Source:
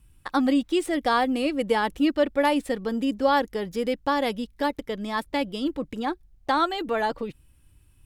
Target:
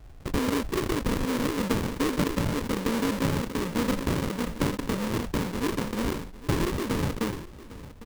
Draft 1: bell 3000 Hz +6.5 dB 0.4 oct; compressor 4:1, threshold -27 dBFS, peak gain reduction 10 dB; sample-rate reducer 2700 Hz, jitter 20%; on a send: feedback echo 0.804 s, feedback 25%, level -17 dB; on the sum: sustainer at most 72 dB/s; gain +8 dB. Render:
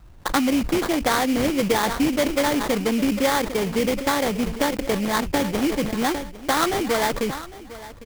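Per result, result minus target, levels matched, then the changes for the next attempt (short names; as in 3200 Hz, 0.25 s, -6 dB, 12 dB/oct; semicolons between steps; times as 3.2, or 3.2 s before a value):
sample-rate reducer: distortion -20 dB; compressor: peak gain reduction -6 dB
change: sample-rate reducer 730 Hz, jitter 20%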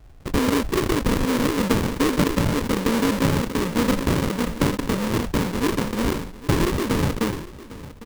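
compressor: peak gain reduction -6 dB
change: compressor 4:1, threshold -35 dBFS, peak gain reduction 16 dB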